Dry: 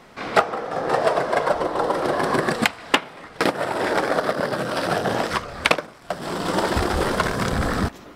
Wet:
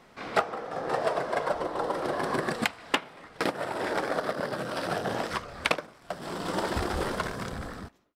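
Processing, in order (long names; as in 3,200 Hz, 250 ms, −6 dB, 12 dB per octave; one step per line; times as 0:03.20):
fade-out on the ending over 1.14 s
level −8 dB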